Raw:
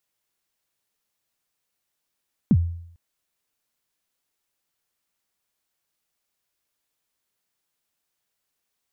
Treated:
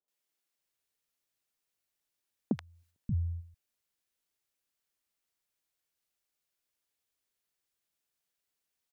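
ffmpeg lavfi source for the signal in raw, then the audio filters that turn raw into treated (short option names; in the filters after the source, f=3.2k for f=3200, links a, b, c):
-f lavfi -i "aevalsrc='0.299*pow(10,-3*t/0.68)*sin(2*PI*(260*0.053/log(85/260)*(exp(log(85/260)*min(t,0.053)/0.053)-1)+85*max(t-0.053,0)))':d=0.45:s=44100"
-filter_complex "[0:a]agate=range=-6dB:threshold=-37dB:ratio=16:detection=peak,acompressor=threshold=-25dB:ratio=6,acrossover=split=170|960[a][b][c];[c]adelay=80[d];[a]adelay=580[e];[e][b][d]amix=inputs=3:normalize=0"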